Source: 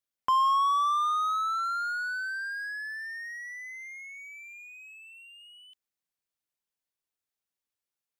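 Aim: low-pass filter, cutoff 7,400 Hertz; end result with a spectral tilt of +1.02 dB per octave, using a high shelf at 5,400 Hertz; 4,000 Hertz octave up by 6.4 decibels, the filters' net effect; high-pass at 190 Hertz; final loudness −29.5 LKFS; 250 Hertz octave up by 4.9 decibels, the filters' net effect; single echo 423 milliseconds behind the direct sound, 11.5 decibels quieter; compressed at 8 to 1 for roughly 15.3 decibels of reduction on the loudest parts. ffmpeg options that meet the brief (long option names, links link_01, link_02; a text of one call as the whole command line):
ffmpeg -i in.wav -af "highpass=190,lowpass=7400,equalizer=frequency=250:width_type=o:gain=7.5,equalizer=frequency=4000:width_type=o:gain=5,highshelf=frequency=5400:gain=8.5,acompressor=threshold=-37dB:ratio=8,aecho=1:1:423:0.266,volume=9dB" out.wav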